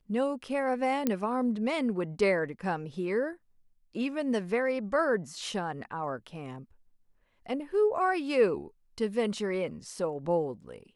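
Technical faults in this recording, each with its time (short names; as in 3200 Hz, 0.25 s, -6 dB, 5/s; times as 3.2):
1.07 pop -13 dBFS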